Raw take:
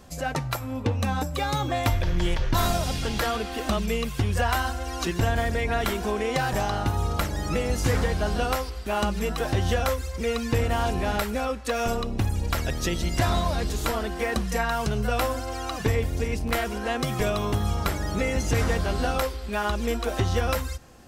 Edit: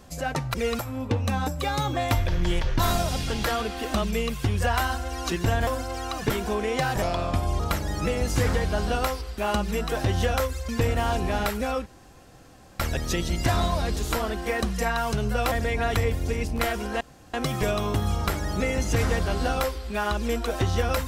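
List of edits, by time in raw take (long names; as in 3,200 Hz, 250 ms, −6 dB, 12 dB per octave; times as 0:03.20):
0:05.42–0:05.87: swap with 0:15.25–0:15.88
0:06.59–0:07.08: play speed 85%
0:10.17–0:10.42: move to 0:00.54
0:11.59–0:12.53: fill with room tone
0:16.92: splice in room tone 0.33 s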